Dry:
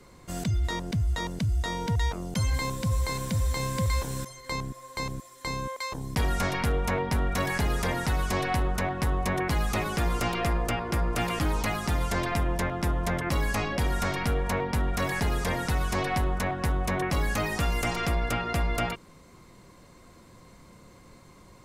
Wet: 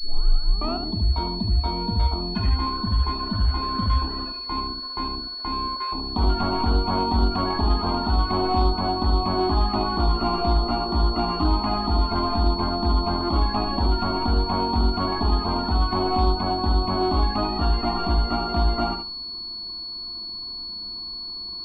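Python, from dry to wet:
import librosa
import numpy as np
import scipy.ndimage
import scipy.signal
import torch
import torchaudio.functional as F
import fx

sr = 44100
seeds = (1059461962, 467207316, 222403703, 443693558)

p1 = fx.tape_start_head(x, sr, length_s=0.99)
p2 = fx.fixed_phaser(p1, sr, hz=510.0, stages=6)
p3 = p2 + fx.echo_feedback(p2, sr, ms=73, feedback_pct=25, wet_db=-6, dry=0)
p4 = fx.spec_topn(p3, sr, count=64)
p5 = fx.backlash(p4, sr, play_db=-44.0)
p6 = p4 + F.gain(torch.from_numpy(p5), -8.0).numpy()
p7 = fx.pwm(p6, sr, carrier_hz=4400.0)
y = F.gain(torch.from_numpy(p7), 5.0).numpy()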